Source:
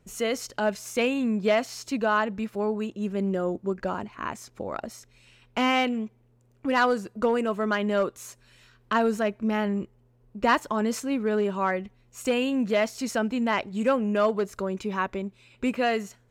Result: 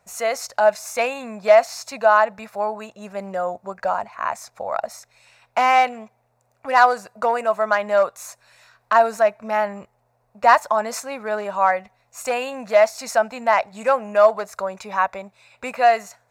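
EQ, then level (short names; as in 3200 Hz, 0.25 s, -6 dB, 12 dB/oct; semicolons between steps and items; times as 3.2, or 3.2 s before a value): HPF 50 Hz; resonant low shelf 480 Hz -12 dB, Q 3; bell 3100 Hz -13.5 dB 0.21 oct; +5.5 dB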